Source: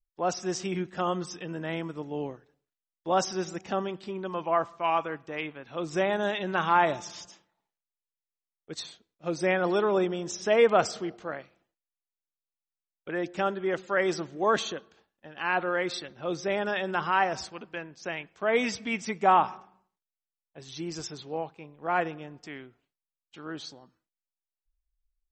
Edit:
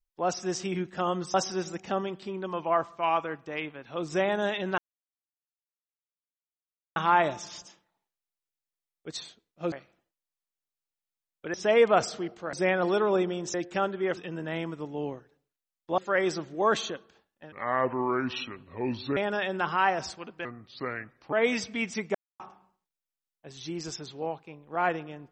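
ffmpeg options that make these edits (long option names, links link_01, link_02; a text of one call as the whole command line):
ffmpeg -i in.wav -filter_complex "[0:a]asplit=15[link_01][link_02][link_03][link_04][link_05][link_06][link_07][link_08][link_09][link_10][link_11][link_12][link_13][link_14][link_15];[link_01]atrim=end=1.342[link_16];[link_02]atrim=start=3.148:end=6.59,asetpts=PTS-STARTPTS,afade=type=out:start_time=3.438:duration=0.004:curve=hsin,apad=pad_dur=2.18[link_17];[link_03]atrim=start=6.59:end=9.352,asetpts=PTS-STARTPTS,afade=type=in:duration=0.004:curve=hsin[link_18];[link_04]atrim=start=11.348:end=13.172[link_19];[link_05]atrim=start=10.358:end=11.352[link_20];[link_06]atrim=start=9.348:end=10.362[link_21];[link_07]atrim=start=13.168:end=13.802[link_22];[link_08]atrim=start=1.338:end=3.152[link_23];[link_09]atrim=start=13.798:end=15.344[link_24];[link_10]atrim=start=15.34:end=16.51,asetpts=PTS-STARTPTS,asetrate=31311,aresample=44100[link_25];[link_11]atrim=start=16.506:end=17.794[link_26];[link_12]atrim=start=17.79:end=18.44,asetpts=PTS-STARTPTS,asetrate=32634,aresample=44100,atrim=end_sample=38736,asetpts=PTS-STARTPTS[link_27];[link_13]atrim=start=18.436:end=19.26,asetpts=PTS-STARTPTS,afade=type=out:start_time=0.82:duration=0.004:curve=hsin[link_28];[link_14]atrim=start=19.26:end=19.51,asetpts=PTS-STARTPTS,volume=0[link_29];[link_15]atrim=start=19.51,asetpts=PTS-STARTPTS,afade=type=in:duration=0.004:curve=hsin[link_30];[link_17][link_18]concat=n=2:v=0:a=1[link_31];[link_16][link_31]acrossfade=duration=0.004:curve1=hsin:curve2=hsin[link_32];[link_32][link_19]acrossfade=duration=0.004:curve1=hsin:curve2=hsin[link_33];[link_33][link_20]acrossfade=duration=0.004:curve1=hsin:curve2=hsin[link_34];[link_34][link_21]acrossfade=duration=0.004:curve1=hsin:curve2=hsin[link_35];[link_35][link_22]acrossfade=duration=0.004:curve1=hsin:curve2=hsin[link_36];[link_36][link_23]acrossfade=duration=0.004:curve1=hsin:curve2=hsin[link_37];[link_37][link_24]acrossfade=duration=0.004:curve1=hsin:curve2=hsin[link_38];[link_38][link_25]acrossfade=duration=0.004:curve1=hsin:curve2=hsin[link_39];[link_39][link_26]acrossfade=duration=0.004:curve1=hsin:curve2=hsin[link_40];[link_40][link_27]acrossfade=duration=0.004:curve1=hsin:curve2=hsin[link_41];[link_28][link_29][link_30]concat=n=3:v=0:a=1[link_42];[link_41][link_42]acrossfade=duration=0.004:curve1=hsin:curve2=hsin" out.wav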